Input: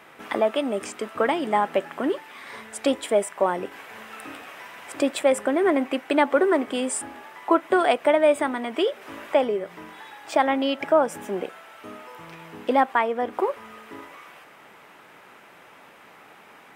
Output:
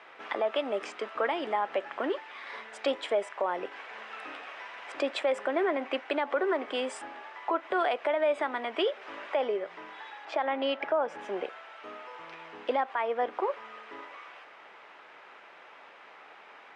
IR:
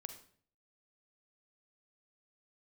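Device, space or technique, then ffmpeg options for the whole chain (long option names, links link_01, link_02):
DJ mixer with the lows and highs turned down: -filter_complex "[0:a]asettb=1/sr,asplit=3[link_01][link_02][link_03];[link_01]atrim=end=10.254[link_04];[link_02]atrim=start=10.25:end=11.19,asetpts=PTS-STARTPTS,afade=type=in:duration=0.004:curve=qsin,afade=type=out:start_time=0.936:duration=0.004:curve=qsin,aemphasis=mode=reproduction:type=50fm[link_05];[link_03]atrim=start=11.186[link_06];[link_04][link_05]acrossfade=duration=0.004:curve1=hsin:curve2=qsin[link_07];[link_07][link_06]acrossfade=duration=0.004:curve1=qsin:curve2=hsin,lowpass=5500,acrossover=split=370 6100:gain=0.141 1 0.251[link_08][link_09][link_10];[link_08][link_09][link_10]amix=inputs=3:normalize=0,alimiter=limit=-17.5dB:level=0:latency=1:release=101,volume=-1.5dB"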